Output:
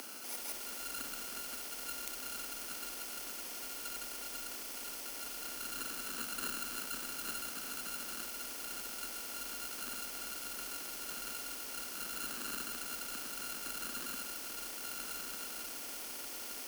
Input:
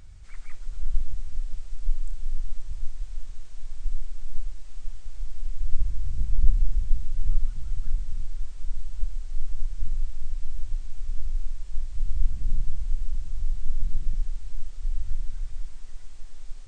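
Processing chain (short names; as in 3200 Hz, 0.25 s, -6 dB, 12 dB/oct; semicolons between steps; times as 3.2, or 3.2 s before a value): FFT order left unsorted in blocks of 32 samples; elliptic high-pass 220 Hz, stop band 60 dB; frequency shift +30 Hz; spectral compressor 2:1; gain +5.5 dB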